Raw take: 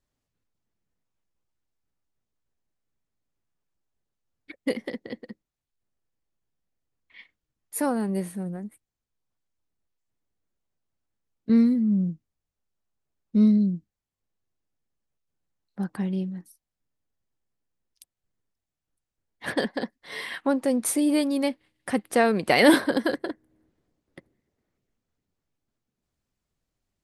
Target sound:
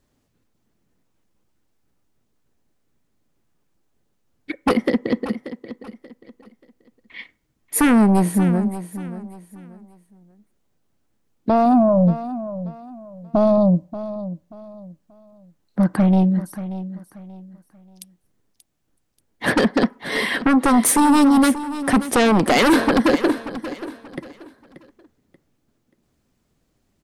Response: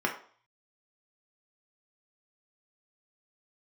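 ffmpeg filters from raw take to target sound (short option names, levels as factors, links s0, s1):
-filter_complex "[0:a]equalizer=f=240:t=o:w=2.5:g=6.5,alimiter=limit=0.266:level=0:latency=1:release=206,aeval=exprs='0.266*sin(PI/2*2.24*val(0)/0.266)':c=same,aecho=1:1:583|1166|1749:0.211|0.0634|0.019,asplit=2[s0][s1];[1:a]atrim=start_sample=2205[s2];[s1][s2]afir=irnorm=-1:irlink=0,volume=0.0473[s3];[s0][s3]amix=inputs=2:normalize=0"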